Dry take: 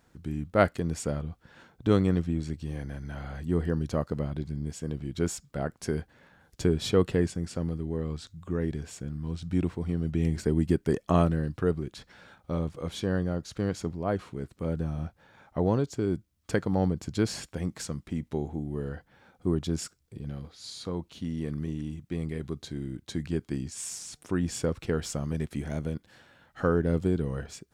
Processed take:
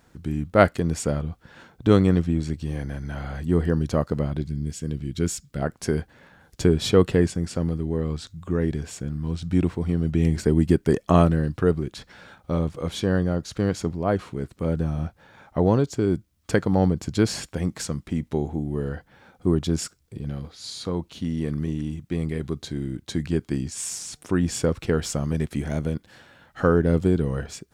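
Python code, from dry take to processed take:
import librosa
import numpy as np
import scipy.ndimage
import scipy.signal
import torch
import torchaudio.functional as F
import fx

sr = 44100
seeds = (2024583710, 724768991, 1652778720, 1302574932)

y = fx.peak_eq(x, sr, hz=800.0, db=-10.5, octaves=1.7, at=(4.42, 5.62))
y = F.gain(torch.from_numpy(y), 6.0).numpy()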